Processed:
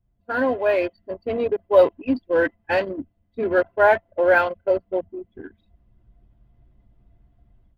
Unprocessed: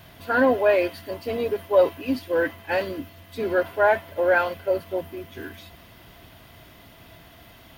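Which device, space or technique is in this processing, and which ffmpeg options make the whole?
voice memo with heavy noise removal: -af "anlmdn=63.1,dynaudnorm=f=590:g=3:m=13dB,volume=-3.5dB"

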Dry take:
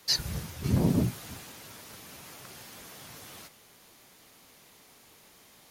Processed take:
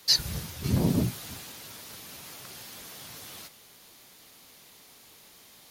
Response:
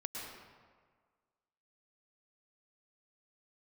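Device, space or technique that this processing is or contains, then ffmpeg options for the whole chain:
presence and air boost: -af "equalizer=f=4k:t=o:w=1.1:g=4.5,highshelf=f=10k:g=6.5"

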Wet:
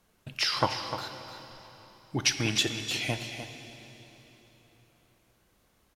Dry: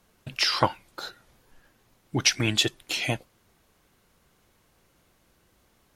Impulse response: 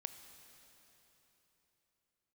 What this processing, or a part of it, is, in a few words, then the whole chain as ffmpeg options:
cave: -filter_complex "[0:a]aecho=1:1:301:0.316[a];[1:a]atrim=start_sample=2205[b];[a][b]afir=irnorm=-1:irlink=0"

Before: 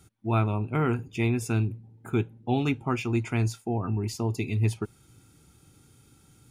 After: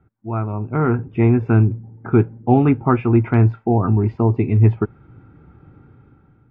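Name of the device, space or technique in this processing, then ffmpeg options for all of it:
action camera in a waterproof case: -af "lowpass=f=1.7k:w=0.5412,lowpass=f=1.7k:w=1.3066,dynaudnorm=f=240:g=7:m=13dB" -ar 32000 -c:a aac -b:a 48k

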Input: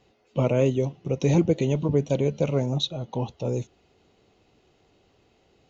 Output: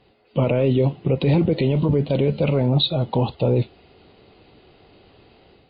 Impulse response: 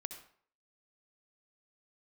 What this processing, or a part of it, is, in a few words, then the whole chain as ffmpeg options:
low-bitrate web radio: -af "dynaudnorm=f=290:g=3:m=6.5dB,alimiter=limit=-15dB:level=0:latency=1:release=20,volume=5dB" -ar 11025 -c:a libmp3lame -b:a 24k

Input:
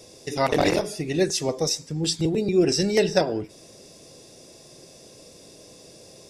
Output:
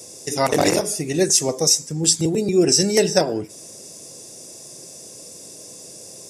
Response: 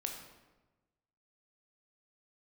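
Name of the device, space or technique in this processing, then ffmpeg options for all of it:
budget condenser microphone: -af "highpass=91,highshelf=f=5.3k:t=q:w=1.5:g=9.5,volume=3dB"

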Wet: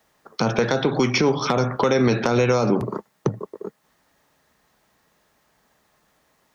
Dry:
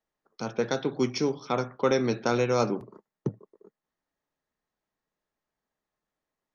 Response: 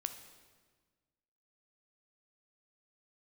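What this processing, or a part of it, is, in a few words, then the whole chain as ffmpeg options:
mastering chain: -filter_complex "[0:a]highpass=48,equalizer=f=340:t=o:w=1.3:g=-3.5,acrossover=split=720|3200[a][b][c];[a]acompressor=threshold=-34dB:ratio=4[d];[b]acompressor=threshold=-42dB:ratio=4[e];[c]acompressor=threshold=-52dB:ratio=4[f];[d][e][f]amix=inputs=3:normalize=0,acompressor=threshold=-37dB:ratio=3,asoftclip=type=hard:threshold=-27.5dB,alimiter=level_in=32.5dB:limit=-1dB:release=50:level=0:latency=1,volume=-8.5dB"

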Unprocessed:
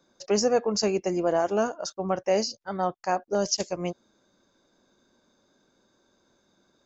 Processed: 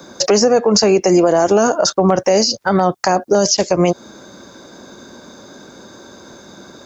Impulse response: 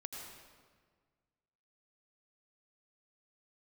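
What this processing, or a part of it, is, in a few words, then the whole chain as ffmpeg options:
mastering chain: -filter_complex "[0:a]highpass=59,equalizer=f=2.9k:t=o:w=0.77:g=-3.5,acrossover=split=380|4000[a][b][c];[a]acompressor=threshold=-38dB:ratio=4[d];[b]acompressor=threshold=-33dB:ratio=4[e];[c]acompressor=threshold=-42dB:ratio=4[f];[d][e][f]amix=inputs=3:normalize=0,acompressor=threshold=-37dB:ratio=2,asoftclip=type=hard:threshold=-25.5dB,alimiter=level_in=31dB:limit=-1dB:release=50:level=0:latency=1,volume=-3dB"

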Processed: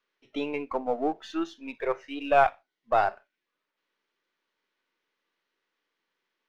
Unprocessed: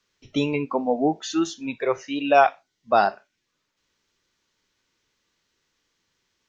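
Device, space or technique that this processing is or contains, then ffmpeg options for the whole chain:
crystal radio: -af "highpass=330,lowpass=2.8k,aeval=exprs='if(lt(val(0),0),0.708*val(0),val(0))':c=same,volume=-3dB"

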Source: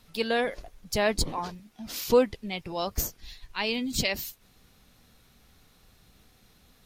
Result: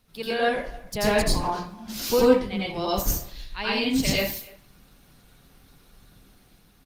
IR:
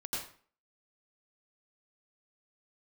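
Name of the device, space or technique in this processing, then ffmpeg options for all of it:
speakerphone in a meeting room: -filter_complex "[1:a]atrim=start_sample=2205[a];[0:a][a]afir=irnorm=-1:irlink=0,asplit=2[b][c];[c]adelay=290,highpass=300,lowpass=3.4k,asoftclip=type=hard:threshold=-18dB,volume=-22dB[d];[b][d]amix=inputs=2:normalize=0,dynaudnorm=f=180:g=9:m=3.5dB" -ar 48000 -c:a libopus -b:a 32k

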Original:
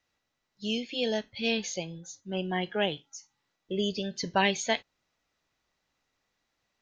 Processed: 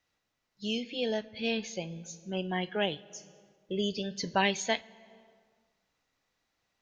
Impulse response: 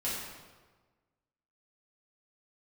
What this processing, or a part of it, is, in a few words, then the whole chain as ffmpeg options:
ducked reverb: -filter_complex "[0:a]asettb=1/sr,asplit=3[a][b][c];[a]atrim=end=0.834[d];[b]atrim=start=0.83:end=1.92,asetpts=PTS-STARTPTS,afade=t=in:d=0.004:c=qsin,afade=t=out:st=1.086:d=0.004:c=qsin,highshelf=f=5.2k:g=-9.5[e];[c]atrim=start=1.916[f];[d][e]acrossfade=d=0.004:c1=hsin:c2=qsin[g];[g][f]acrossfade=d=0.004:c1=qsin:c2=hsin,asplit=3[h][i][j];[1:a]atrim=start_sample=2205[k];[i][k]afir=irnorm=-1:irlink=0[l];[j]apad=whole_len=300568[m];[l][m]sidechaincompress=threshold=-39dB:ratio=6:attack=45:release=462,volume=-13dB[n];[h][n]amix=inputs=2:normalize=0,volume=-2dB"

